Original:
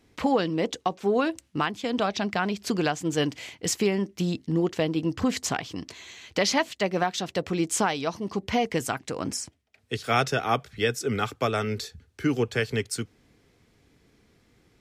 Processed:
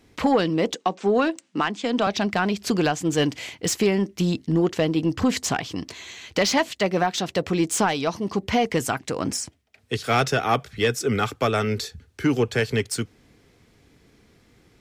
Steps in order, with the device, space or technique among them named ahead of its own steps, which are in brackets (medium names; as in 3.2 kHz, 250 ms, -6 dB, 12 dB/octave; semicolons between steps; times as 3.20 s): 0.74–2.07 s: elliptic band-pass 190–8100 Hz; saturation between pre-emphasis and de-emphasis (treble shelf 3.3 kHz +10.5 dB; saturation -15 dBFS, distortion -16 dB; treble shelf 3.3 kHz -10.5 dB); trim +5 dB